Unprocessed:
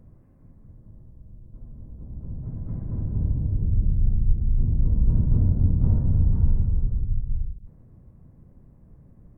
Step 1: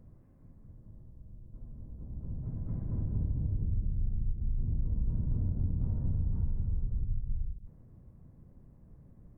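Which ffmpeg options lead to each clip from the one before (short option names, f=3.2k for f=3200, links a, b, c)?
-af "acompressor=threshold=-22dB:ratio=6,volume=-4.5dB"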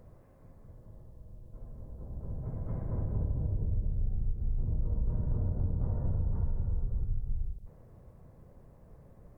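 -af "lowshelf=f=370:t=q:w=1.5:g=-8,volume=8.5dB"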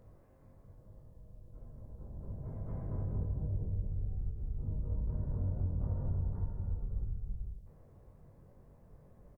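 -filter_complex "[0:a]asplit=2[a][b];[b]adelay=21,volume=-4.5dB[c];[a][c]amix=inputs=2:normalize=0,volume=-5dB"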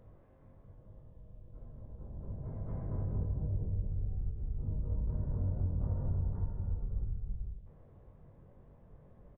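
-af "aresample=8000,aresample=44100,volume=1dB"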